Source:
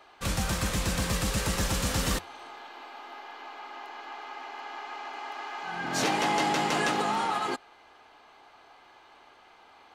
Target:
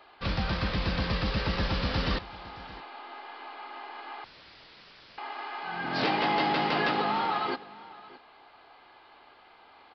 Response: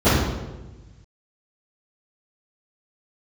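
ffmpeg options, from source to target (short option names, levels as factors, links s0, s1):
-filter_complex "[0:a]aecho=1:1:618:0.106,asettb=1/sr,asplit=3[s0][s1][s2];[s0]atrim=end=4.244[s3];[s1]atrim=start=4.24:end=5.18,asetpts=PTS-STARTPTS,afade=t=in:d=0.004:c=qsin,afade=t=out:st=0.936:d=0.004:c=qsin,aeval=exprs='(mod(168*val(0)+1,2)-1)/168':c=same[s4];[s2]atrim=start=5.176[s5];[s3][s4]acrossfade=d=0.004:c1=hsin:c2=qsin[s6];[s6][s5]acrossfade=d=0.004:c1=qsin:c2=hsin,aresample=11025,aresample=44100"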